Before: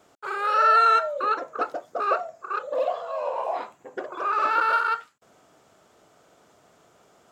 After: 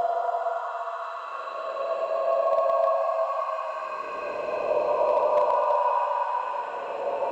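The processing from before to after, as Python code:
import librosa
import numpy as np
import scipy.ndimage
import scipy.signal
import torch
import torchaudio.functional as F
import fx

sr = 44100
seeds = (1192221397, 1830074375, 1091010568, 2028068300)

y = fx.filter_lfo_highpass(x, sr, shape='saw_up', hz=9.6, low_hz=460.0, high_hz=2500.0, q=3.2)
y = fx.paulstretch(y, sr, seeds[0], factor=25.0, window_s=0.1, from_s=3.04)
y = np.clip(y, -10.0 ** (-14.0 / 20.0), 10.0 ** (-14.0 / 20.0))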